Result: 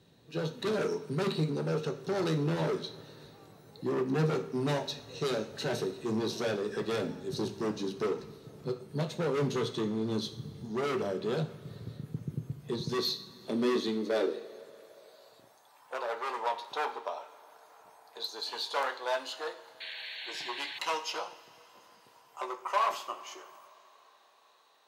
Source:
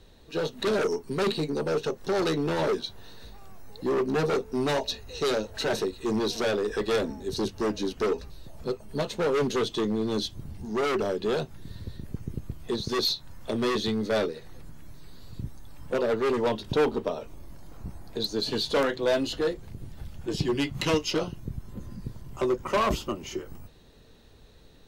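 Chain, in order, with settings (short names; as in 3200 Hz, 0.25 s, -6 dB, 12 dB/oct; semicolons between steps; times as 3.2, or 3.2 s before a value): two-slope reverb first 0.54 s, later 4.4 s, from -18 dB, DRR 6.5 dB; high-pass sweep 140 Hz -> 850 Hz, 12.81–15.77; painted sound noise, 19.8–20.79, 1500–4500 Hz -35 dBFS; gain -7 dB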